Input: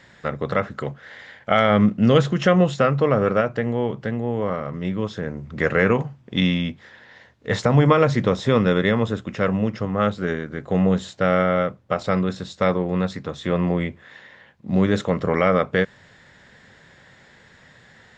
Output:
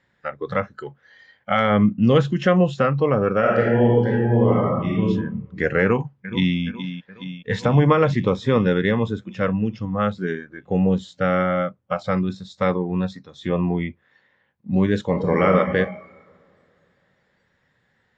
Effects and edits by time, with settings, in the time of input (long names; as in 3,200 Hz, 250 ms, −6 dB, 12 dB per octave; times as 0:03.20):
0:03.39–0:05.03: thrown reverb, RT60 1.5 s, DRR −5 dB
0:05.82–0:06.58: delay throw 420 ms, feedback 75%, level −10 dB
0:15.08–0:15.48: thrown reverb, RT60 2.8 s, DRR 0.5 dB
whole clip: low-pass filter 3,200 Hz 6 dB per octave; notch filter 650 Hz, Q 13; noise reduction from a noise print of the clip's start 15 dB